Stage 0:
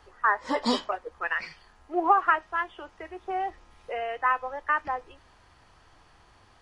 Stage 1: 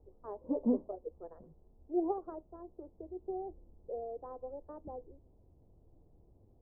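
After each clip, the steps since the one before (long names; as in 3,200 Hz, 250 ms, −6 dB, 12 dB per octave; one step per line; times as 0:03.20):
adaptive Wiener filter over 15 samples
inverse Chebyshev low-pass filter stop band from 2,300 Hz, stop band 70 dB
level −1.5 dB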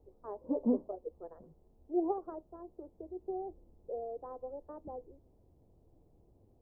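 low-shelf EQ 110 Hz −5 dB
level +1 dB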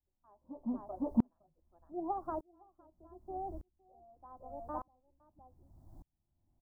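phaser with its sweep stopped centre 1,100 Hz, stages 4
single-tap delay 512 ms −4.5 dB
tremolo with a ramp in dB swelling 0.83 Hz, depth 38 dB
level +13 dB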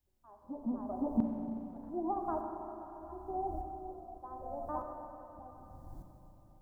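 downward compressor 1.5 to 1, threshold −49 dBFS, peak gain reduction 10 dB
four-comb reverb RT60 3.5 s, combs from 31 ms, DRR 2.5 dB
level +6.5 dB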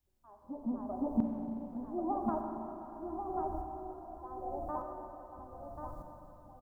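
single-tap delay 1,088 ms −6 dB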